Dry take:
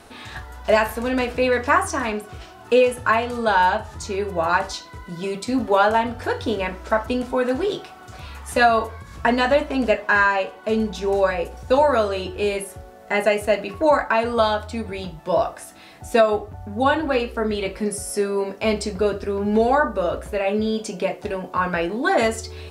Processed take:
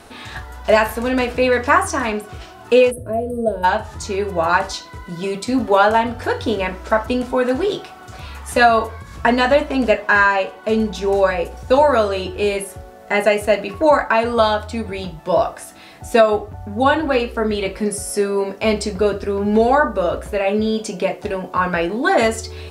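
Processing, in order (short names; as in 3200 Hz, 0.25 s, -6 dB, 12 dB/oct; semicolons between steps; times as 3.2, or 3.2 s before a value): spectral gain 2.91–3.64, 710–8200 Hz -29 dB; gain +3.5 dB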